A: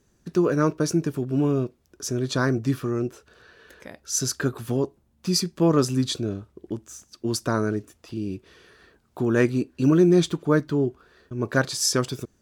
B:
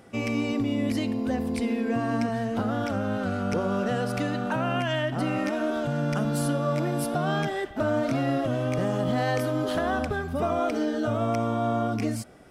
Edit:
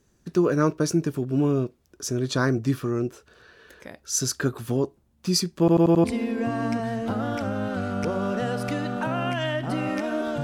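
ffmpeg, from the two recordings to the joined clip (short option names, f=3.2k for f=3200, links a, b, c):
-filter_complex "[0:a]apad=whole_dur=10.43,atrim=end=10.43,asplit=5[a][b][c][d][e];[a]atrim=end=5.682[f];[b]atrim=start=5.588:end=5.682[g];[c]atrim=start=5.588:end=5.682[h];[d]atrim=start=5.588:end=5.682[i];[e]atrim=start=5.588:end=5.682[j];[1:a]atrim=start=1.528:end=5.92[k];[f][g]acrossfade=d=0.004:c1=hsin:c2=hsin[l];[l][h]acrossfade=d=0.004:c1=hsin:c2=hsin[m];[m][i]acrossfade=d=0.004:c1=hsin:c2=hsin[n];[n][j]acrossfade=d=0.004:c1=hsin:c2=hsin[o];[o][k]acrossfade=d=0.004:c1=hsin:c2=hsin"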